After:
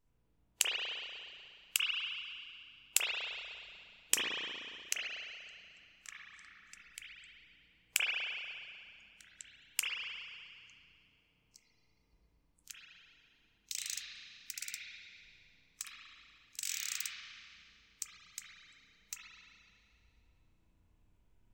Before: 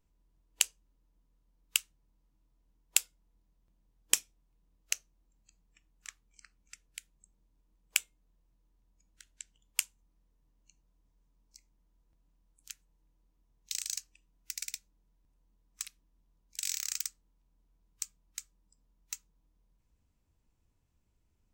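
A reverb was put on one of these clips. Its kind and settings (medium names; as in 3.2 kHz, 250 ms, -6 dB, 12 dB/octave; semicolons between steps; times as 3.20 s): spring tank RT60 2.3 s, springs 34/60 ms, chirp 80 ms, DRR -8 dB; trim -4 dB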